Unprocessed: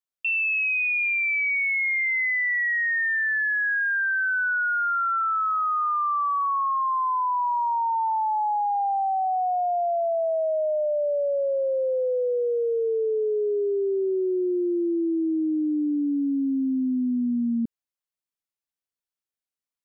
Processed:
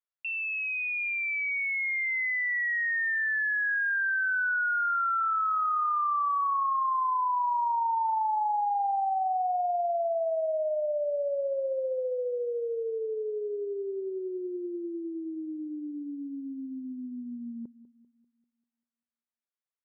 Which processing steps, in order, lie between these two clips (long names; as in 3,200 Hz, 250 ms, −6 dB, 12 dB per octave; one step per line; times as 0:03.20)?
three-way crossover with the lows and the highs turned down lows −13 dB, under 490 Hz, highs −24 dB, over 2,600 Hz
bucket-brigade delay 196 ms, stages 2,048, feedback 44%, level −16.5 dB
level −2.5 dB